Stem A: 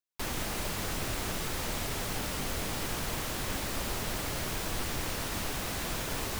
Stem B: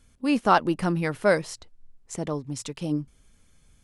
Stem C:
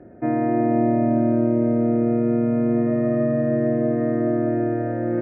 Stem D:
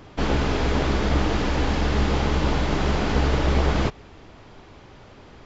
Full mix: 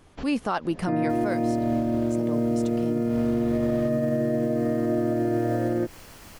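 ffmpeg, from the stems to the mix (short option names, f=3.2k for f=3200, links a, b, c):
-filter_complex "[0:a]bandreject=f=3.7k:w=12,adelay=900,volume=-11.5dB[a];[1:a]volume=-1dB,asplit=2[b][c];[2:a]adelay=650,volume=2dB[d];[3:a]acompressor=threshold=-26dB:ratio=1.5,volume=-11dB[e];[c]apad=whole_len=240710[f];[e][f]sidechaincompress=threshold=-44dB:ratio=5:attack=16:release=127[g];[a][b][d][g]amix=inputs=4:normalize=0,alimiter=limit=-16.5dB:level=0:latency=1:release=106"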